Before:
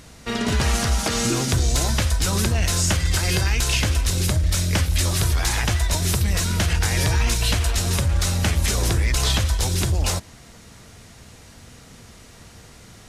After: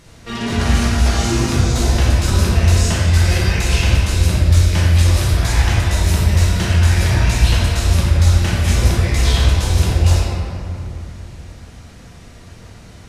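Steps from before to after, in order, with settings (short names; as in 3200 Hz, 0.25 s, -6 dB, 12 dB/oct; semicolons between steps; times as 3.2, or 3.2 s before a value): high shelf 8900 Hz -5 dB; reverb RT60 2.7 s, pre-delay 6 ms, DRR -6.5 dB; gain -3.5 dB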